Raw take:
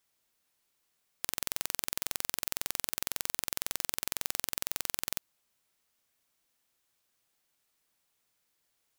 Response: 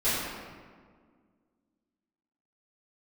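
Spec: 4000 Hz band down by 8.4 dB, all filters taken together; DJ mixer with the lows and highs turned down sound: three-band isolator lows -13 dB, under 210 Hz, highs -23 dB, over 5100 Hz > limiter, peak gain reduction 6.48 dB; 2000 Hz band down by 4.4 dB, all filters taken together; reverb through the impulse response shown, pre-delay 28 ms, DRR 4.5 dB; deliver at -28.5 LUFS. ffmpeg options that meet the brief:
-filter_complex "[0:a]equalizer=f=2k:t=o:g=-3.5,equalizer=f=4k:t=o:g=-6.5,asplit=2[a][b];[1:a]atrim=start_sample=2205,adelay=28[c];[b][c]afir=irnorm=-1:irlink=0,volume=-17dB[d];[a][d]amix=inputs=2:normalize=0,acrossover=split=210 5100:gain=0.224 1 0.0708[e][f][g];[e][f][g]amix=inputs=3:normalize=0,volume=21dB,alimiter=limit=-5.5dB:level=0:latency=1"

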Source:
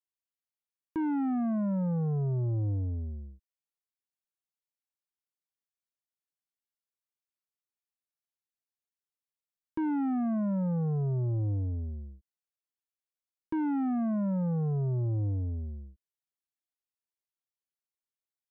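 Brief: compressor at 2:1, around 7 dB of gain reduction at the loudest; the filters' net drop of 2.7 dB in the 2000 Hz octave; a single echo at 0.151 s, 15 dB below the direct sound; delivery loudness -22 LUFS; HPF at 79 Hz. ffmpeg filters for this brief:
-af "highpass=79,equalizer=f=2k:t=o:g=-4,acompressor=threshold=-40dB:ratio=2,aecho=1:1:151:0.178,volume=16dB"

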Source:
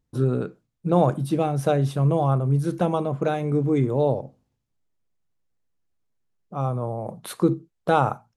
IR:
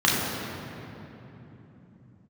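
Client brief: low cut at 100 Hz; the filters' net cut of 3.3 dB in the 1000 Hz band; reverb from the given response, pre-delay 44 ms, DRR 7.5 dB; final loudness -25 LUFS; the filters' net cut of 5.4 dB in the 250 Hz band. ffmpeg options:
-filter_complex "[0:a]highpass=100,equalizer=f=250:t=o:g=-8.5,equalizer=f=1k:t=o:g=-4,asplit=2[a][b];[1:a]atrim=start_sample=2205,adelay=44[c];[b][c]afir=irnorm=-1:irlink=0,volume=-26.5dB[d];[a][d]amix=inputs=2:normalize=0,volume=1dB"

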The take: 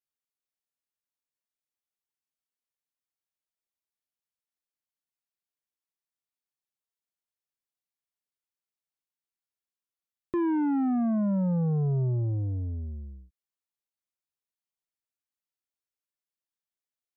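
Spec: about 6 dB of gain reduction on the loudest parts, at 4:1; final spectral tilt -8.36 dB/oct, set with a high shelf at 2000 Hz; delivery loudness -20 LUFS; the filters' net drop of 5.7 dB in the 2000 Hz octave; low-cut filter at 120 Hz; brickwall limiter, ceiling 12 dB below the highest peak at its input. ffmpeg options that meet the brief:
-af "highpass=120,highshelf=f=2k:g=-6.5,equalizer=f=2k:t=o:g=-4.5,acompressor=threshold=-31dB:ratio=4,volume=20.5dB,alimiter=limit=-13.5dB:level=0:latency=1"

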